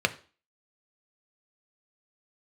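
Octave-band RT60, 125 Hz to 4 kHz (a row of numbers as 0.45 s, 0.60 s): 0.30 s, 0.40 s, 0.40 s, 0.40 s, 0.35 s, 0.40 s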